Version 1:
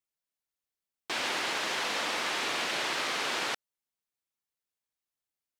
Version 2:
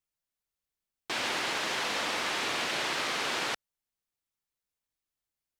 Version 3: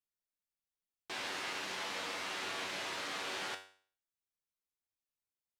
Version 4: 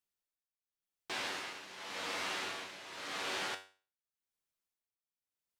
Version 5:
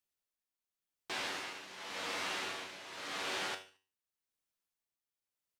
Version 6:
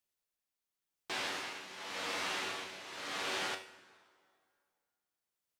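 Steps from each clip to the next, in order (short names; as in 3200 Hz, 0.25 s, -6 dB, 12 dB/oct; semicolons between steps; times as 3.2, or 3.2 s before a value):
low shelf 100 Hz +11.5 dB
resonator 95 Hz, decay 0.46 s, harmonics all, mix 80%
tremolo 0.89 Hz, depth 76%; gain +2.5 dB
feedback echo 74 ms, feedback 37%, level -18 dB
plate-style reverb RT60 2.2 s, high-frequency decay 0.75×, DRR 15 dB; gain +1 dB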